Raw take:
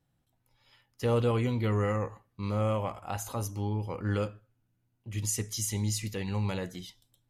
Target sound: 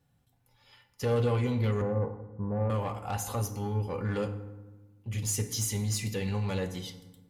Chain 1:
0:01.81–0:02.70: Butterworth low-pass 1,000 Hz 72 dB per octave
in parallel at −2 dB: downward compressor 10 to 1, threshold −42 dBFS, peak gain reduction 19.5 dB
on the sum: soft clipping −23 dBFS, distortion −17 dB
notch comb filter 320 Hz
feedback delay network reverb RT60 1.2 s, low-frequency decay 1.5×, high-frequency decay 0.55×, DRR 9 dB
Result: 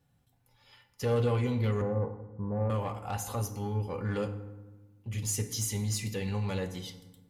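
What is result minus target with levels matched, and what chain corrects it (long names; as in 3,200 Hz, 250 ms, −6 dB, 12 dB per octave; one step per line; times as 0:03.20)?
downward compressor: peak gain reduction +8 dB
0:01.81–0:02.70: Butterworth low-pass 1,000 Hz 72 dB per octave
in parallel at −2 dB: downward compressor 10 to 1, threshold −33 dBFS, peak gain reduction 11.5 dB
on the sum: soft clipping −23 dBFS, distortion −15 dB
notch comb filter 320 Hz
feedback delay network reverb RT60 1.2 s, low-frequency decay 1.5×, high-frequency decay 0.55×, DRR 9 dB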